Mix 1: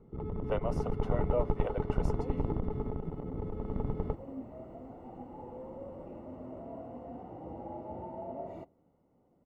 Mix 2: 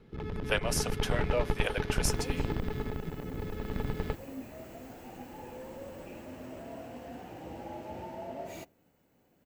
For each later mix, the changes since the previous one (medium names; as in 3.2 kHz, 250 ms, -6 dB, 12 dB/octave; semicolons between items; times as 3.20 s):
master: remove Savitzky-Golay filter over 65 samples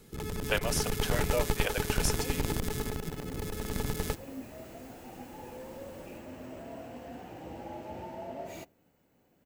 first sound: remove distance through air 320 m